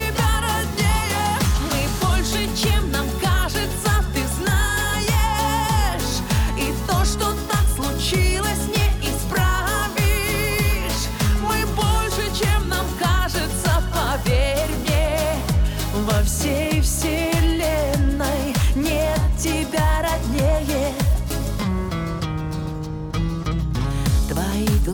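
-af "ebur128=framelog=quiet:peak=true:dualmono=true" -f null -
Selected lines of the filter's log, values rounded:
Integrated loudness:
  I:         -18.0 LUFS
  Threshold: -28.0 LUFS
Loudness range:
  LRA:         2.0 LU
  Threshold: -37.9 LUFS
  LRA low:   -19.4 LUFS
  LRA high:  -17.4 LUFS
True peak:
  Peak:      -10.0 dBFS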